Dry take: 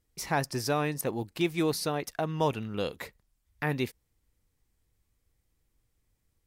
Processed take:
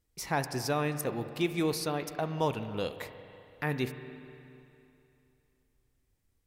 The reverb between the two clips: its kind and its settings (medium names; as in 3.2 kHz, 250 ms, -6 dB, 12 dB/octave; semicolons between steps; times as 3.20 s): spring tank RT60 2.8 s, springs 31/47 ms, chirp 50 ms, DRR 9.5 dB; trim -2 dB